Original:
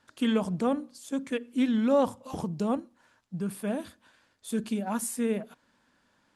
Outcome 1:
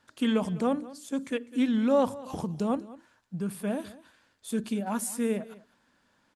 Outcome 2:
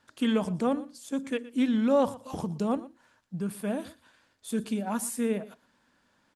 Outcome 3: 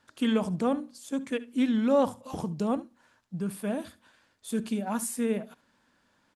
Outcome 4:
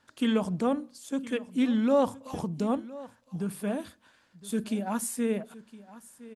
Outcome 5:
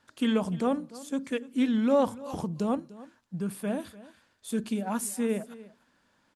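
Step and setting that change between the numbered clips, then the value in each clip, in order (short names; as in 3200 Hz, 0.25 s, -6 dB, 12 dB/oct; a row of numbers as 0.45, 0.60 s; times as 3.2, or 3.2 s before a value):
echo, time: 202, 118, 71, 1013, 296 ms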